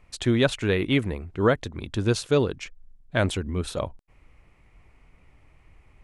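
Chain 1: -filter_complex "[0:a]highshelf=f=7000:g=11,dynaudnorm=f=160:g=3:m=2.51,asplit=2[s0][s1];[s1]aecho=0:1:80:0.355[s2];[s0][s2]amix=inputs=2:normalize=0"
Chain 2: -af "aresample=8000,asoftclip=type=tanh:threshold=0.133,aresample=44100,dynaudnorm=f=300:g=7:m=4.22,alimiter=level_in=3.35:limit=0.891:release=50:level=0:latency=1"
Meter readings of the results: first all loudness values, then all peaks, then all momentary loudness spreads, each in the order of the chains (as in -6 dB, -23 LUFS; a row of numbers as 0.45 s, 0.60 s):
-18.5 LUFS, -11.5 LUFS; -1.5 dBFS, -1.0 dBFS; 8 LU, 7 LU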